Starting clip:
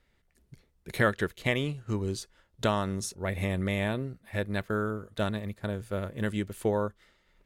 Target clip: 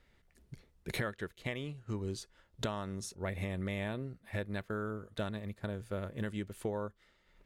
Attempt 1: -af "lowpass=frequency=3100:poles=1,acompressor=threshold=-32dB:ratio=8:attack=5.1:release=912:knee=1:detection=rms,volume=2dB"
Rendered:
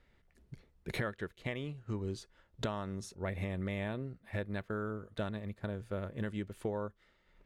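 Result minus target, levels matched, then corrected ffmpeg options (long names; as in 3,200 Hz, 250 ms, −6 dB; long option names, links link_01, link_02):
8,000 Hz band −5.5 dB
-af "lowpass=frequency=8900:poles=1,acompressor=threshold=-32dB:ratio=8:attack=5.1:release=912:knee=1:detection=rms,volume=2dB"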